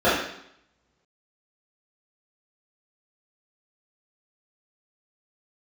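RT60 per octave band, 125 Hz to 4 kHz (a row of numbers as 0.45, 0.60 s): 1.0, 0.75, 0.70, 0.75, 0.70, 0.75 s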